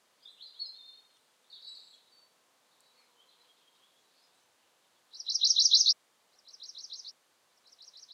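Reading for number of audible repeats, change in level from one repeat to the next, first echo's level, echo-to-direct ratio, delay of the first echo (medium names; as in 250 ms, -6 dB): 2, -7.5 dB, -23.0 dB, -22.0 dB, 1187 ms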